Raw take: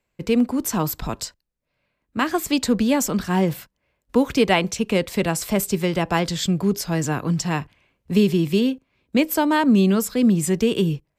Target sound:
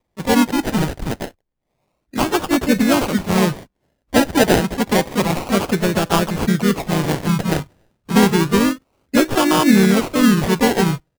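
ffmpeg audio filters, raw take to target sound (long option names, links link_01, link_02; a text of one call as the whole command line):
ffmpeg -i in.wav -filter_complex "[0:a]acrusher=samples=31:mix=1:aa=0.000001:lfo=1:lforange=18.6:lforate=0.29,asplit=3[link_01][link_02][link_03];[link_02]asetrate=37084,aresample=44100,atempo=1.18921,volume=-15dB[link_04];[link_03]asetrate=52444,aresample=44100,atempo=0.840896,volume=-5dB[link_05];[link_01][link_04][link_05]amix=inputs=3:normalize=0,volume=2.5dB" out.wav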